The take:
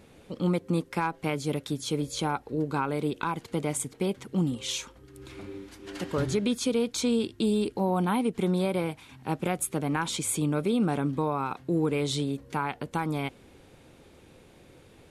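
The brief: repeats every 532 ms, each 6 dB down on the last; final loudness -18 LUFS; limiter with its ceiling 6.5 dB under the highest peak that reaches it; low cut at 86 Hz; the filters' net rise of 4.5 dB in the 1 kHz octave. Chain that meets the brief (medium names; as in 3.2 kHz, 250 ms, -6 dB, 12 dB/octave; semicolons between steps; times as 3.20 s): high-pass 86 Hz; peaking EQ 1 kHz +5.5 dB; peak limiter -18.5 dBFS; feedback delay 532 ms, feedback 50%, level -6 dB; trim +11 dB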